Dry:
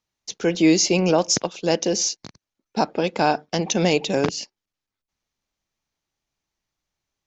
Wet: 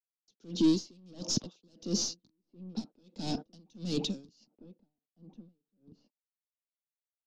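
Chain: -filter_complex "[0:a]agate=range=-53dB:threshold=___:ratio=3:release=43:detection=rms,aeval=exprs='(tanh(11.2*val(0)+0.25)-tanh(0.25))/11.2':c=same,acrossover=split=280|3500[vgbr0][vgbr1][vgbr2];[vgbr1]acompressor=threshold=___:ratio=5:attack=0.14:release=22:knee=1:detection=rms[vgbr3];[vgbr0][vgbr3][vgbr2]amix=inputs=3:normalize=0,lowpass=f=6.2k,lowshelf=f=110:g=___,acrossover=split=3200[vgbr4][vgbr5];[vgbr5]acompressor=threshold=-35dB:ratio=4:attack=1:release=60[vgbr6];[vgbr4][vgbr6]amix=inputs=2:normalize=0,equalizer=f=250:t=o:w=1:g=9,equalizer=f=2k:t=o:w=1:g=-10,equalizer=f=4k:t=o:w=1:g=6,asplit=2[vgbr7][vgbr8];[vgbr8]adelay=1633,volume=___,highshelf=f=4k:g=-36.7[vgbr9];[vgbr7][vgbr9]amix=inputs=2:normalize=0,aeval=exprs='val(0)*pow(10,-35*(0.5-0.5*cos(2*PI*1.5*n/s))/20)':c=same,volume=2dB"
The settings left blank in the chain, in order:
-43dB, -42dB, -4, -22dB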